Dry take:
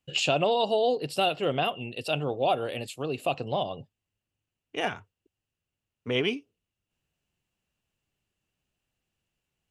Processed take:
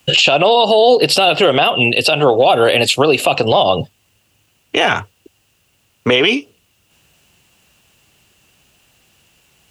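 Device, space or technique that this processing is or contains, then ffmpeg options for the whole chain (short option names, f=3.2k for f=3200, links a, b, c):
mastering chain: -filter_complex "[0:a]highpass=44,equalizer=f=1.8k:t=o:w=0.77:g=-2.5,acrossover=split=320|5400[a][b][c];[a]acompressor=threshold=-43dB:ratio=4[d];[b]acompressor=threshold=-27dB:ratio=4[e];[c]acompressor=threshold=-58dB:ratio=4[f];[d][e][f]amix=inputs=3:normalize=0,acompressor=threshold=-34dB:ratio=2,tiltshelf=f=640:g=-3.5,alimiter=level_in=28dB:limit=-1dB:release=50:level=0:latency=1,volume=-1dB"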